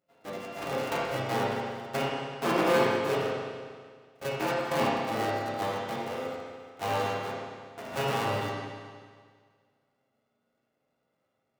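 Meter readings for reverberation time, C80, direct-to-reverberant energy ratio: 1.8 s, 0.5 dB, -7.0 dB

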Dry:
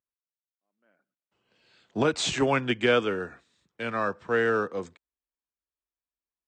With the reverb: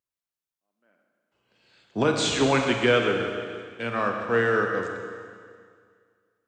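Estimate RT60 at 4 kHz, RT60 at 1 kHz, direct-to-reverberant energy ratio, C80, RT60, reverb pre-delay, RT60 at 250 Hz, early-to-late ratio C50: 2.0 s, 2.0 s, 2.5 dB, 4.5 dB, 2.0 s, 34 ms, 2.0 s, 3.0 dB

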